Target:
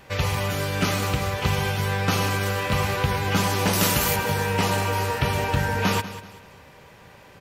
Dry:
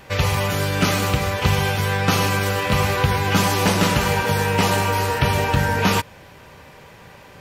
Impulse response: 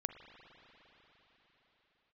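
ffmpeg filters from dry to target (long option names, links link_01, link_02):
-filter_complex "[0:a]asettb=1/sr,asplit=3[link_01][link_02][link_03];[link_01]atrim=end=3.734[link_04];[link_02]atrim=start=3.73:end=4.16,asetpts=PTS-STARTPTS,afade=type=in:duration=0.004:curve=qsin,afade=type=out:start_time=0.426:duration=0.004:curve=qsin,aemphasis=mode=production:type=50fm[link_05];[link_03]atrim=start=4.156[link_06];[link_04][link_05]acrossfade=duration=0.004:curve1=hsin:curve2=qsin[link_07];[link_07][link_06]acrossfade=duration=0.004:curve1=qsin:curve2=hsin,aecho=1:1:192|384|576:0.2|0.0698|0.0244,volume=-4.5dB"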